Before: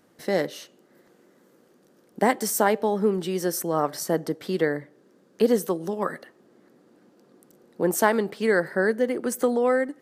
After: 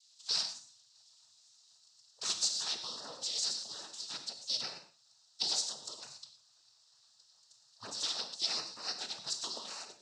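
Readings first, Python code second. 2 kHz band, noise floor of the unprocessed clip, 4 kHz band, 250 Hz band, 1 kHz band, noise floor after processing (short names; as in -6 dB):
-20.5 dB, -60 dBFS, +7.0 dB, -32.5 dB, -21.5 dB, -67 dBFS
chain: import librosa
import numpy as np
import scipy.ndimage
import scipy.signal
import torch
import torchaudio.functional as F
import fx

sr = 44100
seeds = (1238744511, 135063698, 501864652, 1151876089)

y = fx.spec_gate(x, sr, threshold_db=-20, keep='weak')
y = fx.noise_vocoder(y, sr, seeds[0], bands=12)
y = fx.high_shelf_res(y, sr, hz=3100.0, db=13.0, q=3.0)
y = fx.rev_gated(y, sr, seeds[1], gate_ms=140, shape='flat', drr_db=7.0)
y = F.gain(torch.from_numpy(y), -6.5).numpy()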